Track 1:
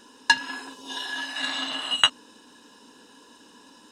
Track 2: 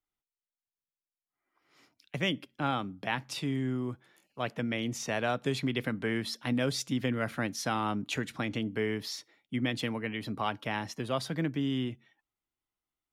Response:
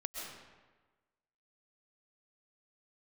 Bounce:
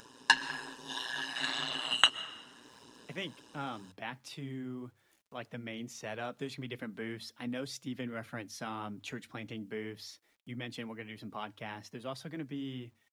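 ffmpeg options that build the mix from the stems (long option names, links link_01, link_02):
-filter_complex "[0:a]tremolo=f=120:d=0.919,volume=0.5dB,asplit=2[link_01][link_02];[link_02]volume=-12dB[link_03];[1:a]bandreject=frequency=50:width_type=h:width=6,bandreject=frequency=100:width_type=h:width=6,acrusher=bits=10:mix=0:aa=0.000001,adelay=950,volume=-5dB[link_04];[2:a]atrim=start_sample=2205[link_05];[link_03][link_05]afir=irnorm=-1:irlink=0[link_06];[link_01][link_04][link_06]amix=inputs=3:normalize=0,flanger=delay=1.2:depth=3.9:regen=-47:speed=1.8:shape=triangular,acompressor=mode=upward:threshold=-51dB:ratio=2.5"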